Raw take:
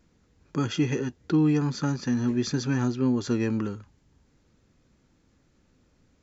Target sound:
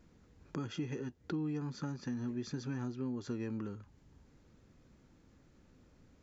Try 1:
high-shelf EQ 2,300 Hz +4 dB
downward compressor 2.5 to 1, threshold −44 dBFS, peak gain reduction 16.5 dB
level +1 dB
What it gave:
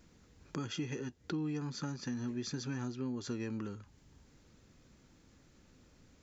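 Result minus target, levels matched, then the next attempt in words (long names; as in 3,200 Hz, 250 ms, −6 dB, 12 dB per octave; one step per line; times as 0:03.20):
4,000 Hz band +6.0 dB
high-shelf EQ 2,300 Hz −5 dB
downward compressor 2.5 to 1, threshold −44 dBFS, peak gain reduction 16.5 dB
level +1 dB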